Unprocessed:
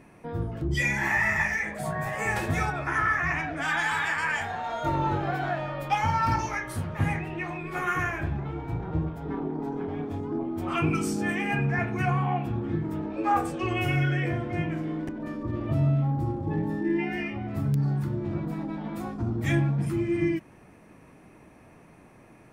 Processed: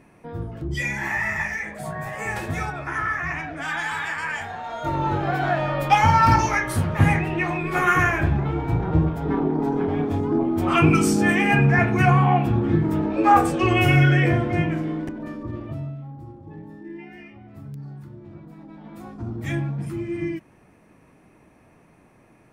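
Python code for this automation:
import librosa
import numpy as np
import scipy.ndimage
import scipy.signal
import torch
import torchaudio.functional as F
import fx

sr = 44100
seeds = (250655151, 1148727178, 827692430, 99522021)

y = fx.gain(x, sr, db=fx.line((4.68, -0.5), (5.74, 9.0), (14.35, 9.0), (15.56, -1.0), (15.97, -11.5), (18.53, -11.5), (19.27, -2.0)))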